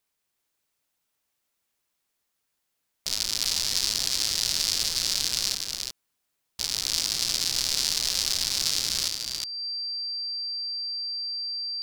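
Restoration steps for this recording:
notch filter 4,700 Hz, Q 30
echo removal 360 ms −4.5 dB

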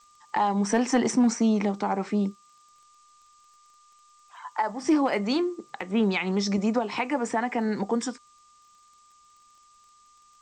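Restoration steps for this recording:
clipped peaks rebuilt −15 dBFS
click removal
notch filter 1,200 Hz, Q 30
noise reduction from a noise print 13 dB

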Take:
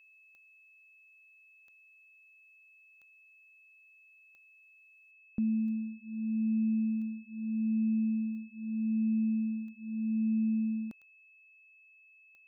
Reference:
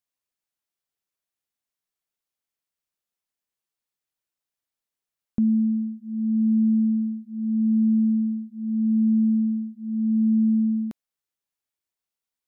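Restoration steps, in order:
click removal
notch filter 2,600 Hz, Q 30
level 0 dB, from 0:05.11 +9.5 dB

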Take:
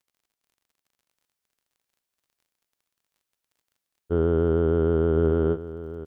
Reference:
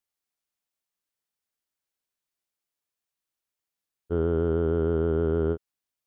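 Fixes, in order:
click removal
echo removal 1,043 ms −14 dB
level 0 dB, from 0:01.12 −3 dB

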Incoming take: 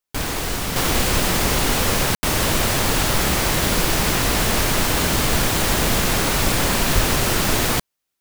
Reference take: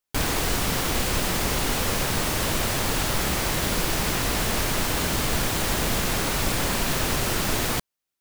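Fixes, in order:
0:06.94–0:07.06: high-pass filter 140 Hz 24 dB per octave
ambience match 0:02.15–0:02.23
level 0 dB, from 0:00.76 −5.5 dB

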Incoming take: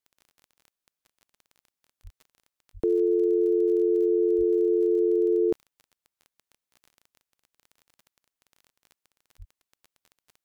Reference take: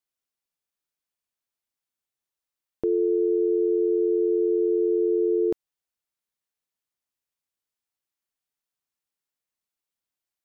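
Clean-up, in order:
click removal
high-pass at the plosives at 0:02.03/0:02.73/0:04.37/0:09.38

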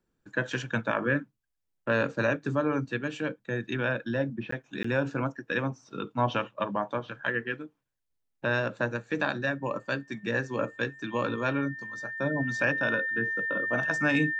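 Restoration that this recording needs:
notch filter 1,800 Hz, Q 30
repair the gap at 0:04.51/0:04.83, 14 ms

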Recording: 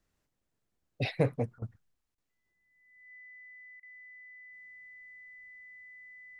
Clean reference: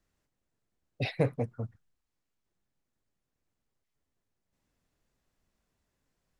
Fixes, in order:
notch filter 2,000 Hz, Q 30
repair the gap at 0:01.59/0:02.15/0:03.80, 28 ms
level correction +3 dB, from 0:02.51

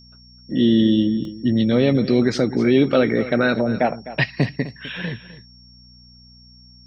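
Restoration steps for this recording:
hum removal 60.8 Hz, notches 4
notch filter 5,500 Hz, Q 30
repair the gap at 0:01.25, 1.2 ms
echo removal 255 ms −15 dB

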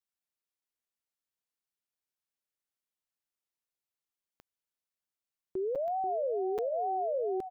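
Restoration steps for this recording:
click removal
repair the gap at 0:01.87/0:05.75/0:06.58, 6.7 ms
echo removal 486 ms −9 dB

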